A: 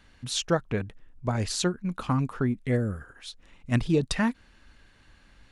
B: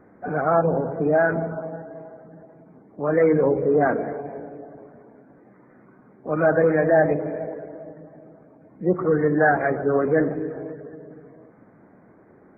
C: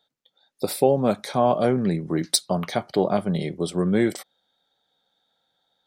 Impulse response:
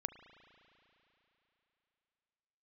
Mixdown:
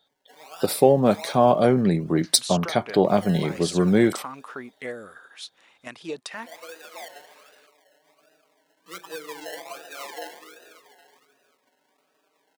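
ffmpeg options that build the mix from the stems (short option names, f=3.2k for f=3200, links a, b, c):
-filter_complex "[0:a]adelay=2150,volume=2.5dB[a];[1:a]acrusher=samples=29:mix=1:aa=0.000001:lfo=1:lforange=17.4:lforate=1.3,asplit=2[b][c];[c]adelay=4.9,afreqshift=0.26[d];[b][d]amix=inputs=2:normalize=1,adelay=50,volume=-8.5dB,afade=t=in:st=7.96:d=0.29:silence=0.375837[e];[2:a]volume=2.5dB[f];[a][e]amix=inputs=2:normalize=0,highpass=560,alimiter=limit=-22.5dB:level=0:latency=1:release=304,volume=0dB[g];[f][g]amix=inputs=2:normalize=0"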